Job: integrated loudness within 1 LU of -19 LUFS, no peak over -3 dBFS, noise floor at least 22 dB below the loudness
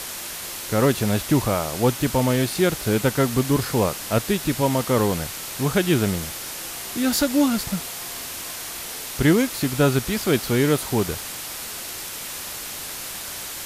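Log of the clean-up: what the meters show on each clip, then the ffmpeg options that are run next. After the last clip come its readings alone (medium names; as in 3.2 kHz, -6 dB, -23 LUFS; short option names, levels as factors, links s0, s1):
noise floor -33 dBFS; noise floor target -45 dBFS; loudness -23.0 LUFS; peak level -6.5 dBFS; loudness target -19.0 LUFS
-> -af "afftdn=nr=12:nf=-33"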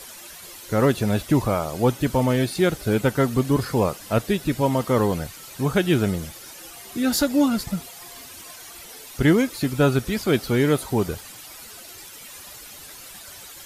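noise floor -42 dBFS; noise floor target -44 dBFS
-> -af "afftdn=nr=6:nf=-42"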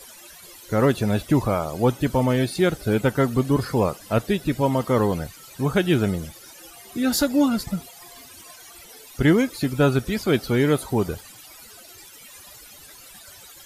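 noise floor -46 dBFS; loudness -22.5 LUFS; peak level -7.0 dBFS; loudness target -19.0 LUFS
-> -af "volume=1.5"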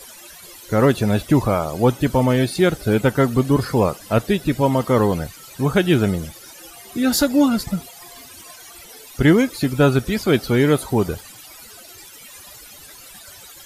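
loudness -19.0 LUFS; peak level -3.5 dBFS; noise floor -42 dBFS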